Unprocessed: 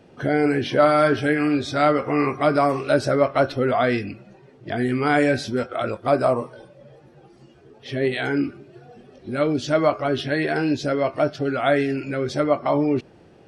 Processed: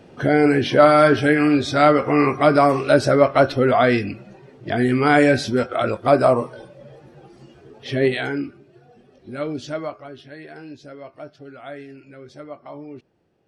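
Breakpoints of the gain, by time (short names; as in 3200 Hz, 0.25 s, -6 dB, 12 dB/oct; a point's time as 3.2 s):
8.06 s +4 dB
8.47 s -5.5 dB
9.64 s -5.5 dB
10.14 s -16.5 dB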